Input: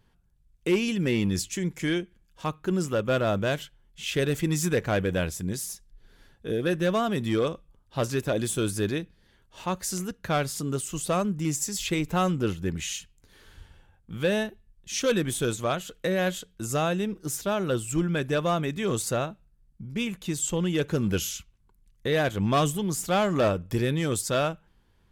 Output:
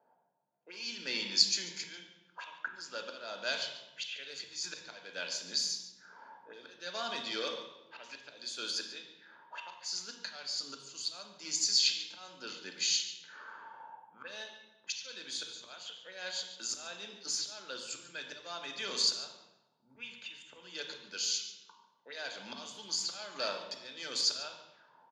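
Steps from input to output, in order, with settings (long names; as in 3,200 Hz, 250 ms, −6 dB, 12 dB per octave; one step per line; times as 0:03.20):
Butterworth high-pass 150 Hz 48 dB per octave
parametric band 920 Hz +11 dB 0.27 octaves
automatic gain control gain up to 7 dB
volume swells 503 ms
envelope filter 680–4,400 Hz, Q 4.3, up, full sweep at −33.5 dBFS
high-frequency loss of the air 51 metres
single-tap delay 142 ms −16.5 dB
convolution reverb RT60 1.1 s, pre-delay 3 ms, DRR 4 dB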